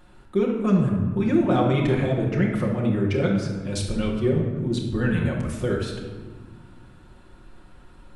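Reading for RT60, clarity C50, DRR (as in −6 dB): 1.5 s, 3.0 dB, −3.5 dB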